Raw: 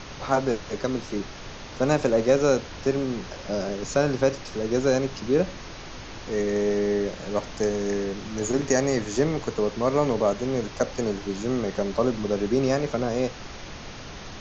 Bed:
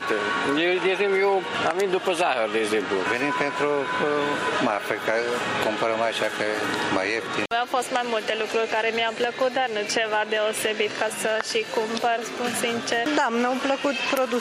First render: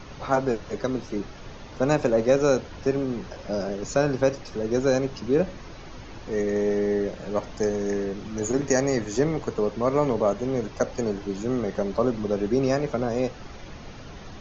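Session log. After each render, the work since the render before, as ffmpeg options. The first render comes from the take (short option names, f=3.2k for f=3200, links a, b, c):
-af "afftdn=nr=8:nf=-40"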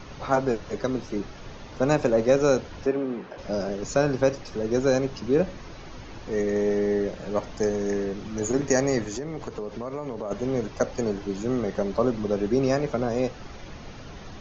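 -filter_complex "[0:a]asettb=1/sr,asplit=3[a][b][c];[a]atrim=end=2.864[d];[b]atrim=start=2.86:end=3.38,asetpts=PTS-STARTPTS,afade=t=in:d=0.004:c=qsin,afade=t=out:st=0.516:d=0.004:c=qsin,acrossover=split=170 3300:gain=0.0708 1 0.178[e][f][g];[e][f][g]amix=inputs=3:normalize=0[h];[c]atrim=start=3.376[i];[d][h]acrossfade=d=0.004:c1=hsin:c2=qsin[j];[j][i]acrossfade=d=0.004:c1=qsin:c2=hsin,asplit=3[k][l][m];[k]afade=t=out:st=9.08:d=0.02[n];[l]acompressor=threshold=-29dB:ratio=5:attack=3.2:release=140:knee=1:detection=peak,afade=t=in:st=9.08:d=0.02,afade=t=out:st=10.3:d=0.02[o];[m]afade=t=in:st=10.3:d=0.02[p];[n][o][p]amix=inputs=3:normalize=0"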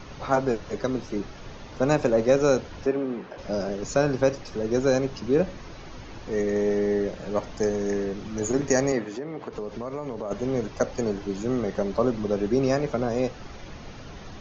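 -filter_complex "[0:a]asettb=1/sr,asplit=3[a][b][c];[a]atrim=end=8.924[d];[b]atrim=start=8.92:end=9.53,asetpts=PTS-STARTPTS,afade=t=in:d=0.004:c=qsin,afade=t=out:st=0.606:d=0.004:c=qsin,highpass=180,lowpass=3.3k[e];[c]atrim=start=9.526[f];[d][e]acrossfade=d=0.004:c1=hsin:c2=qsin[g];[g][f]acrossfade=d=0.004:c1=qsin:c2=hsin"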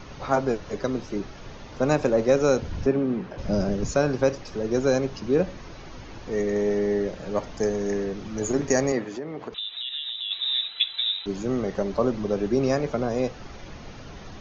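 -filter_complex "[0:a]asettb=1/sr,asplit=3[a][b][c];[a]atrim=end=2.624[d];[b]atrim=start=2.62:end=3.91,asetpts=PTS-STARTPTS,afade=t=in:d=0.004:c=qsin,afade=t=out:st=1.286:d=0.004:c=qsin,bass=f=250:g=11,treble=f=4k:g=1[e];[c]atrim=start=3.906[f];[d][e]acrossfade=d=0.004:c1=hsin:c2=qsin[g];[g][f]acrossfade=d=0.004:c1=qsin:c2=hsin,asettb=1/sr,asplit=3[h][i][j];[h]atrim=end=9.544[k];[i]atrim=start=9.54:end=11.26,asetpts=PTS-STARTPTS,afade=t=in:d=0.004:c=qsin,afade=t=out:st=1.716:d=0.004:c=qsin,lowpass=f=3.4k:t=q:w=0.5098,lowpass=f=3.4k:t=q:w=0.6013,lowpass=f=3.4k:t=q:w=0.9,lowpass=f=3.4k:t=q:w=2.563,afreqshift=-4000[l];[j]atrim=start=11.256[m];[k][l]acrossfade=d=0.004:c1=hsin:c2=qsin[n];[n][m]acrossfade=d=0.004:c1=qsin:c2=hsin"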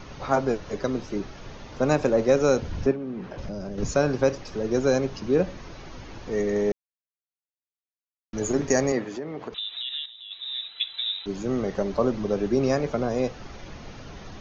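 -filter_complex "[0:a]asettb=1/sr,asplit=3[a][b][c];[a]atrim=end=2.914[d];[b]atrim=start=2.91:end=3.78,asetpts=PTS-STARTPTS,afade=t=in:d=0.004:c=qsin,afade=t=out:st=0.866:d=0.004:c=qsin,acompressor=threshold=-29dB:ratio=12:attack=3.2:release=140:knee=1:detection=peak[e];[c]atrim=start=3.776[f];[d][e]acrossfade=d=0.004:c1=hsin:c2=qsin[g];[g][f]acrossfade=d=0.004:c1=qsin:c2=hsin,asplit=4[h][i][j][k];[h]atrim=end=6.72,asetpts=PTS-STARTPTS,afade=t=out:st=6.716:d=0.004:c=hsin[l];[i]atrim=start=6.72:end=8.33,asetpts=PTS-STARTPTS,volume=0[m];[j]atrim=start=8.33:end=10.06,asetpts=PTS-STARTPTS,afade=t=in:d=0.004:c=hsin,afade=t=out:st=1.726:d=0.004:c=hsin:silence=0.199526[n];[k]atrim=start=10.06,asetpts=PTS-STARTPTS,afade=t=in:d=1.56:silence=0.199526[o];[l][m][n][o]concat=n=4:v=0:a=1"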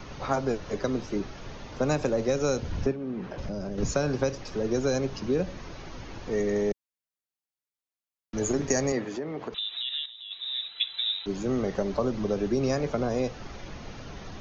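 -filter_complex "[0:a]acrossover=split=150|3000[a][b][c];[b]acompressor=threshold=-23dB:ratio=6[d];[a][d][c]amix=inputs=3:normalize=0"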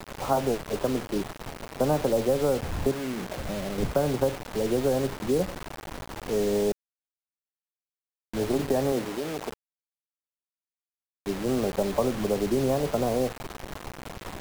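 -af "lowpass=f=890:t=q:w=1.6,acrusher=bits=5:mix=0:aa=0.000001"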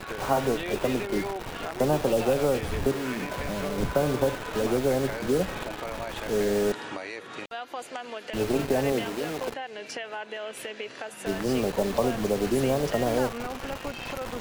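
-filter_complex "[1:a]volume=-12.5dB[a];[0:a][a]amix=inputs=2:normalize=0"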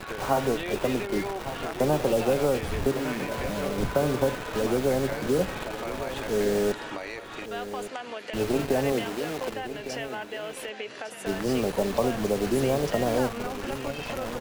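-af "aecho=1:1:1156:0.251"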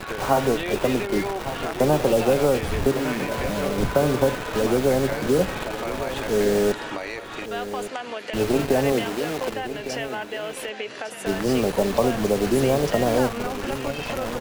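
-af "volume=4.5dB"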